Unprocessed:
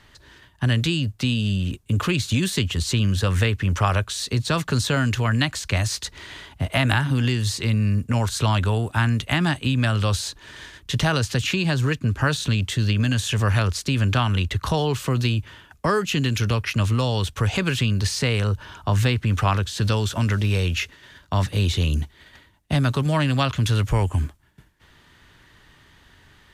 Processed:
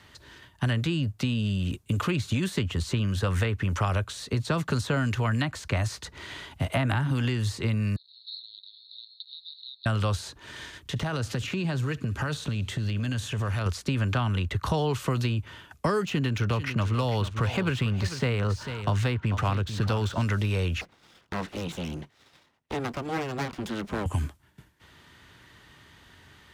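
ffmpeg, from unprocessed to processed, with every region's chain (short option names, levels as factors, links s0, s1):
-filter_complex "[0:a]asettb=1/sr,asplit=3[s0][s1][s2];[s0]atrim=end=7.964[s3];[s1]atrim=start=7.96:end=9.86,asetpts=PTS-STARTPTS,afade=t=in:d=0.004:c=qsin,afade=t=out:st=1.896:d=0.004:c=qsin,aeval=exprs='val(0)+0.5*0.0531*sgn(val(0))':c=same,asuperpass=centerf=4000:order=8:qfactor=5.5[s4];[s2]atrim=start=9.856[s5];[s3][s4]acrossfade=d=0.004:c1=hsin:c2=qsin[s6];[s6][s5]acrossfade=d=0.004:c1=qsin:c2=hsin,asettb=1/sr,asplit=3[s7][s8][s9];[s7]atrim=end=10.794[s10];[s8]atrim=start=10.79:end=13.66,asetpts=PTS-STARTPTS,afade=t=in:d=0.004:c=qsin,afade=t=out:st=2.866:d=0.004:c=qsin,acompressor=threshold=0.0708:ratio=10:attack=3.2:release=140:knee=1:detection=peak,volume=9.44,asoftclip=hard,volume=0.106,aecho=1:1:66|132|198|264:0.0708|0.0411|0.0238|0.0138,atrim=end_sample=126567[s11];[s9]atrim=start=13.656[s12];[s10][s11]acrossfade=d=0.004:c1=hsin:c2=qsin[s13];[s13][s12]acrossfade=d=0.004:c1=qsin:c2=hsin,asettb=1/sr,asplit=3[s14][s15][s16];[s14]atrim=end=16.054[s17];[s15]atrim=start=16.05:end=20.23,asetpts=PTS-STARTPTS,afade=t=in:d=0.004:c=qsin,afade=t=out:st=4.176:d=0.004:c=qsin,adynamicsmooth=sensitivity=7:basefreq=3900,aecho=1:1:444:0.224,atrim=end_sample=184338[s18];[s16]atrim=start=20.226[s19];[s17][s18]acrossfade=d=0.004:c1=hsin:c2=qsin[s20];[s20][s19]acrossfade=d=0.004:c1=qsin:c2=hsin,asettb=1/sr,asplit=3[s21][s22][s23];[s21]atrim=end=20.814[s24];[s22]atrim=start=20.81:end=24.06,asetpts=PTS-STARTPTS,afade=t=in:d=0.004:c=qsin,afade=t=out:st=3.246:d=0.004:c=qsin,lowpass=f=1400:p=1,lowshelf=f=360:g=-8,aeval=exprs='abs(val(0))':c=same[s25];[s23]atrim=start=24.056[s26];[s24][s25]acrossfade=d=0.004:c1=hsin:c2=qsin[s27];[s27][s26]acrossfade=d=0.004:c1=qsin:c2=hsin,highpass=63,bandreject=f=1700:w=25,acrossover=split=590|1900[s28][s29][s30];[s28]acompressor=threshold=0.0631:ratio=4[s31];[s29]acompressor=threshold=0.0316:ratio=4[s32];[s30]acompressor=threshold=0.01:ratio=4[s33];[s31][s32][s33]amix=inputs=3:normalize=0"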